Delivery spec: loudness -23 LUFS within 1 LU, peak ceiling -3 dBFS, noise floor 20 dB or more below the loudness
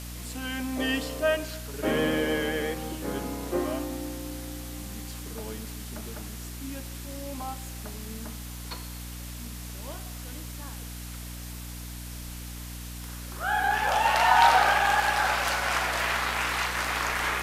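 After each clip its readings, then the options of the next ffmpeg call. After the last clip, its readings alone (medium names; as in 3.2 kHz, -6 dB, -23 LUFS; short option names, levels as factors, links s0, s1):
hum 60 Hz; highest harmonic 300 Hz; hum level -37 dBFS; noise floor -39 dBFS; noise floor target -48 dBFS; loudness -28.0 LUFS; peak level -6.5 dBFS; loudness target -23.0 LUFS
-> -af "bandreject=f=60:t=h:w=6,bandreject=f=120:t=h:w=6,bandreject=f=180:t=h:w=6,bandreject=f=240:t=h:w=6,bandreject=f=300:t=h:w=6"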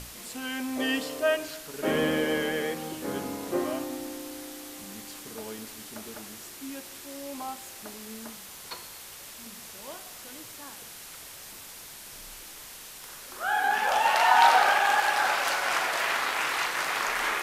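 hum not found; noise floor -45 dBFS; noise floor target -46 dBFS
-> -af "afftdn=nr=6:nf=-45"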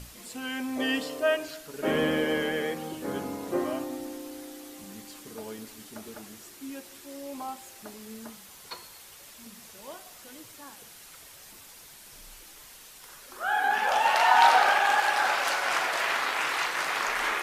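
noise floor -50 dBFS; loudness -26.0 LUFS; peak level -6.5 dBFS; loudness target -23.0 LUFS
-> -af "volume=1.41"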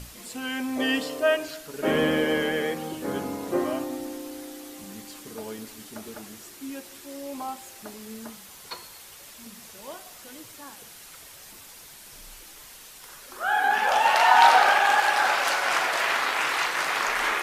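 loudness -23.0 LUFS; peak level -3.5 dBFS; noise floor -47 dBFS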